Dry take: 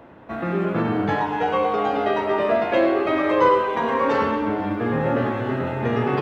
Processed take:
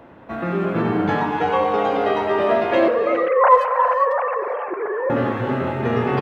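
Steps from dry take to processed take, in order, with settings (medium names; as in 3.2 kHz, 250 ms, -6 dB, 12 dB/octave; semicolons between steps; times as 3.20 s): 2.88–5.10 s: formants replaced by sine waves; speakerphone echo 90 ms, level -13 dB; gated-style reverb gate 430 ms rising, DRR 7 dB; trim +1 dB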